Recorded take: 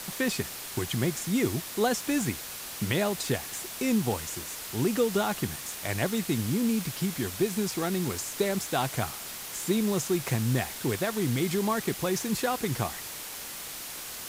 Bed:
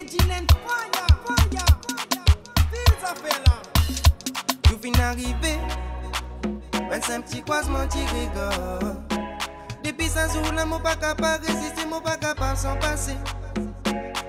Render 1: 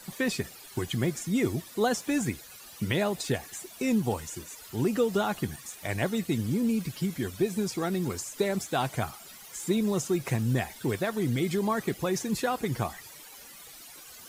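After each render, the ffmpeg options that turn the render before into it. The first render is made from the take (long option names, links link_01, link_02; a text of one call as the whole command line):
ffmpeg -i in.wav -af "afftdn=noise_reduction=14:noise_floor=-40" out.wav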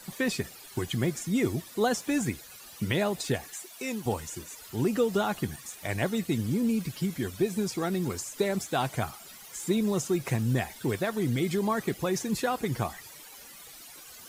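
ffmpeg -i in.wav -filter_complex "[0:a]asettb=1/sr,asplit=3[link_01][link_02][link_03];[link_01]atrim=end=3.514[link_04];[link_02]atrim=start=3.51:end=4.06,asetpts=PTS-STARTPTS,afade=type=in:duration=0.004:curve=qsin,afade=type=out:start_time=0.546:duration=0.004:curve=qsin,highpass=frequency=670:poles=1[link_05];[link_03]atrim=start=4.056[link_06];[link_04][link_05]acrossfade=duration=0.004:curve1=hsin:curve2=qsin[link_07];[link_07][link_06]acrossfade=duration=0.004:curve1=qsin:curve2=hsin" out.wav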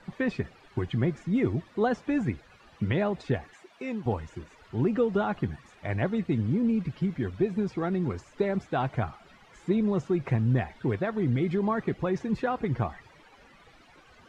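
ffmpeg -i in.wav -af "lowpass=2100,lowshelf=frequency=110:gain=7" out.wav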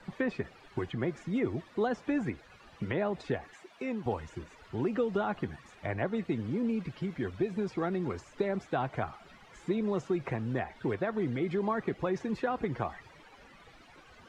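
ffmpeg -i in.wav -filter_complex "[0:a]acrossover=split=290|2100[link_01][link_02][link_03];[link_01]acompressor=threshold=-38dB:ratio=4[link_04];[link_02]acompressor=threshold=-28dB:ratio=4[link_05];[link_03]acompressor=threshold=-49dB:ratio=4[link_06];[link_04][link_05][link_06]amix=inputs=3:normalize=0" out.wav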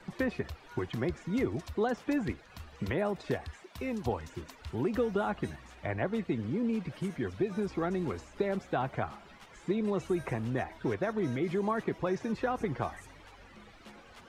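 ffmpeg -i in.wav -i bed.wav -filter_complex "[1:a]volume=-28dB[link_01];[0:a][link_01]amix=inputs=2:normalize=0" out.wav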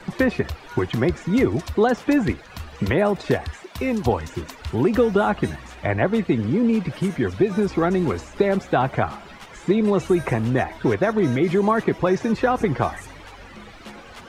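ffmpeg -i in.wav -af "volume=12dB" out.wav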